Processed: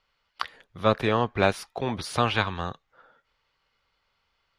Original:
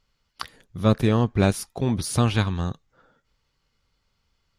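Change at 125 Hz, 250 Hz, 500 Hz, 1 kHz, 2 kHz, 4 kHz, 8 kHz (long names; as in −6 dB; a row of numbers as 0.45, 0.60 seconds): −9.5, −7.5, 0.0, +4.0, +4.0, +1.0, −9.0 decibels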